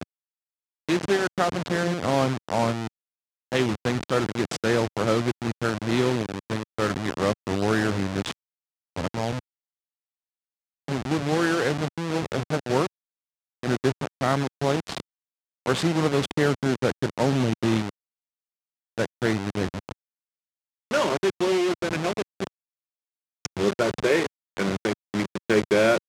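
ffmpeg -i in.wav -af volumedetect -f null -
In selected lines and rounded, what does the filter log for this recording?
mean_volume: -26.4 dB
max_volume: -8.0 dB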